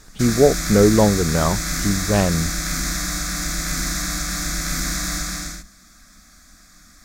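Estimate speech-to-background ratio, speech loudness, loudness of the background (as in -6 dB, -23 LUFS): 5.0 dB, -18.5 LUFS, -23.5 LUFS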